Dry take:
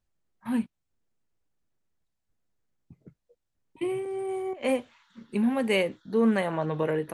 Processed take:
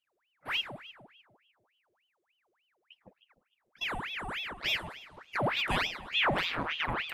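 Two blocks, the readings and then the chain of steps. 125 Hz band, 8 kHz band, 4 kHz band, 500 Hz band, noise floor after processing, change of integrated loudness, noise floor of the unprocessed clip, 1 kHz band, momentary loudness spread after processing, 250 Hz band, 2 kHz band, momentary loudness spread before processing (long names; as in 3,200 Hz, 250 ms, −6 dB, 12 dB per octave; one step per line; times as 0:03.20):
−4.5 dB, −4.0 dB, +8.5 dB, −12.5 dB, −81 dBFS, −3.5 dB, −81 dBFS, +1.5 dB, 17 LU, −15.5 dB, +4.5 dB, 9 LU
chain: echo with a time of its own for lows and highs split 470 Hz, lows 151 ms, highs 108 ms, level −12 dB
ring modulator whose carrier an LFO sweeps 1,700 Hz, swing 80%, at 3.4 Hz
level −3 dB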